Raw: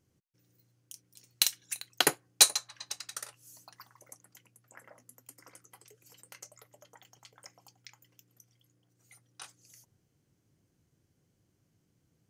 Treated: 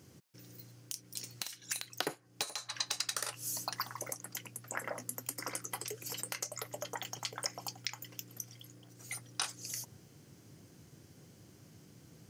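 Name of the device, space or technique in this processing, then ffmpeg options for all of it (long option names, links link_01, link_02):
broadcast voice chain: -af "highpass=98,deesser=0.75,acompressor=threshold=-49dB:ratio=5,equalizer=frequency=5000:width_type=o:width=0.37:gain=3,alimiter=level_in=8.5dB:limit=-24dB:level=0:latency=1:release=459,volume=-8.5dB,volume=16.5dB"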